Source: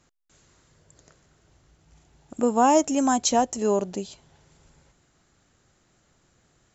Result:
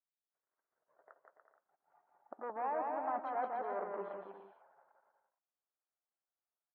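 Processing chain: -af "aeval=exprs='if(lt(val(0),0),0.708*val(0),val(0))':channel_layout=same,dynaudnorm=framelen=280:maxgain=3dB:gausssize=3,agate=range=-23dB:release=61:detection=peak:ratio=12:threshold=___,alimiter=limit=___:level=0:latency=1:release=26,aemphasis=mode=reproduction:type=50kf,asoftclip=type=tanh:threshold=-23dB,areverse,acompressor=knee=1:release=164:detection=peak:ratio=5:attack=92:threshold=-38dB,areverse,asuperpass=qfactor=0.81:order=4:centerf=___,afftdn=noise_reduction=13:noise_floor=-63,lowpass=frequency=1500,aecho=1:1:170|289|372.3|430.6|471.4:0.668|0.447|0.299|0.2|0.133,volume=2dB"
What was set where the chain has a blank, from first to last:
-58dB, -12dB, 1100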